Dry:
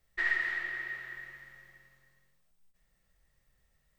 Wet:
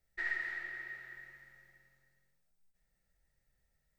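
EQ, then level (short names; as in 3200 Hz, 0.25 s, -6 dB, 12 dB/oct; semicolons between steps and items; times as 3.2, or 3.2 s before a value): Butterworth band-stop 1100 Hz, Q 5.5; bell 3100 Hz -5.5 dB 0.45 oct; -6.0 dB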